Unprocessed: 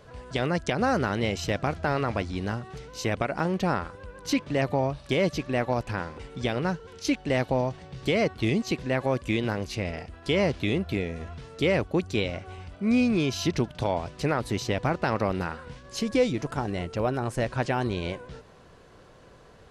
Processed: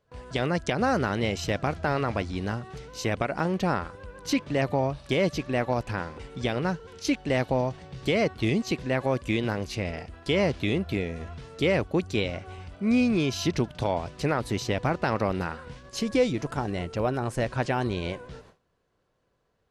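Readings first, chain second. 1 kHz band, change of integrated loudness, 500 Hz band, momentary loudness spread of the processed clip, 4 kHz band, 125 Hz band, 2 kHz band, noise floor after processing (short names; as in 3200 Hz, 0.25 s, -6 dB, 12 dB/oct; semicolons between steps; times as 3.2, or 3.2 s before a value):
0.0 dB, 0.0 dB, 0.0 dB, 9 LU, 0.0 dB, 0.0 dB, 0.0 dB, -73 dBFS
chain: gate with hold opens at -37 dBFS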